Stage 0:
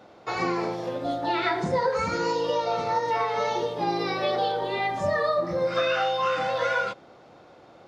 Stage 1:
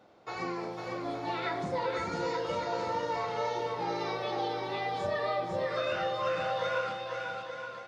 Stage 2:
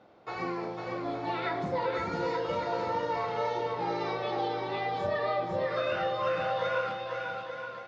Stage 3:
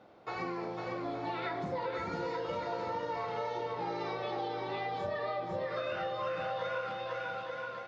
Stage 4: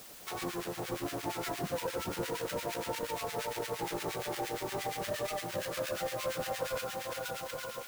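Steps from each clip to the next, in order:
bouncing-ball echo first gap 500 ms, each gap 0.75×, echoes 5; trim -9 dB
distance through air 120 m; trim +2 dB
compression 2.5:1, threshold -35 dBFS, peak gain reduction 7 dB
square wave that keeps the level; harmonic tremolo 8.6 Hz, depth 100%, crossover 1.3 kHz; added noise white -51 dBFS

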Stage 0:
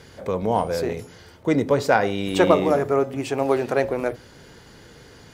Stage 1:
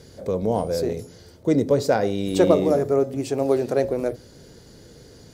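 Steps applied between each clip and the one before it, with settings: high-order bell 1.6 kHz -9.5 dB 2.3 oct; trim +1 dB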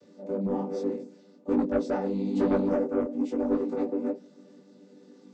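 vocoder on a held chord major triad, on G3; saturation -15 dBFS, distortion -13 dB; detune thickener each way 40 cents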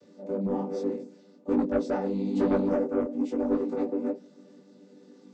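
no audible change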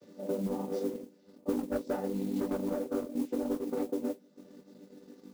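compression 6:1, threshold -30 dBFS, peak gain reduction 10 dB; transient shaper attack +3 dB, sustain -9 dB; modulation noise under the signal 23 dB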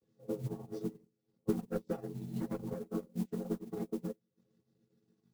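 coarse spectral quantiser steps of 15 dB; frequency shift -67 Hz; upward expansion 2.5:1, over -42 dBFS; trim +2 dB

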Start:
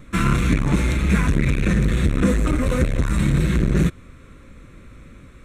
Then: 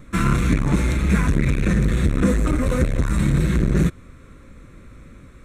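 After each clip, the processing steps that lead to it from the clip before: peaking EQ 2.9 kHz -4 dB 0.77 oct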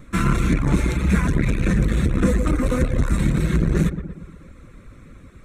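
filtered feedback delay 119 ms, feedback 55%, low-pass 2.1 kHz, level -7 dB; reverb removal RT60 0.5 s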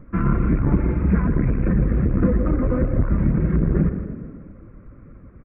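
Gaussian low-pass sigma 5.4 samples; on a send: frequency-shifting echo 160 ms, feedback 51%, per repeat +33 Hz, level -12.5 dB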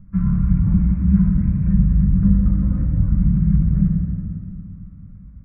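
FFT filter 190 Hz 0 dB, 360 Hz -27 dB, 810 Hz -16 dB; on a send at -1 dB: reverberation RT60 2.2 s, pre-delay 5 ms

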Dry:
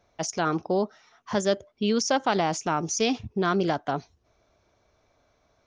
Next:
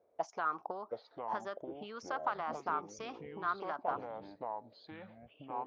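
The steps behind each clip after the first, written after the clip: compression, threshold -26 dBFS, peak gain reduction 8 dB; auto-wah 470–1200 Hz, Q 3.4, up, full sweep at -26 dBFS; ever faster or slower copies 643 ms, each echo -6 st, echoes 3, each echo -6 dB; trim +2.5 dB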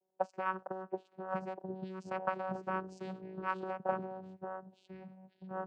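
vocoder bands 8, saw 188 Hz; three bands expanded up and down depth 40%; trim +1 dB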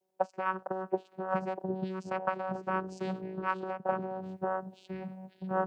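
gain riding within 5 dB 0.5 s; trim +5 dB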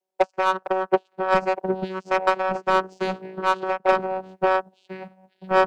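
treble shelf 3.4 kHz +10.5 dB; overdrive pedal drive 23 dB, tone 1.9 kHz, clips at -14 dBFS; upward expansion 2.5:1, over -38 dBFS; trim +7.5 dB

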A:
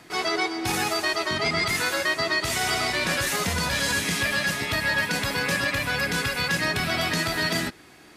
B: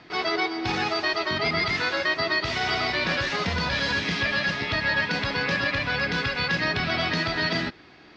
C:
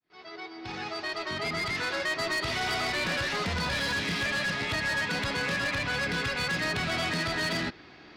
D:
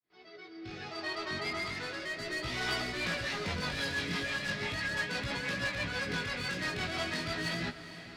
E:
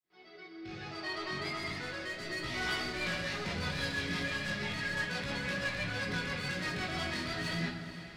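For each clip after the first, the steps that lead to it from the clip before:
steep low-pass 5.1 kHz 36 dB/octave
fade-in on the opening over 2.43 s; saturation -25.5 dBFS, distortion -11 dB
rotary cabinet horn 0.6 Hz, later 6 Hz, at 2.50 s; chorus 0.37 Hz, delay 15.5 ms, depth 6.4 ms; echo that smears into a reverb 451 ms, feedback 44%, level -13 dB
simulated room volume 790 m³, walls mixed, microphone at 0.98 m; trim -3 dB

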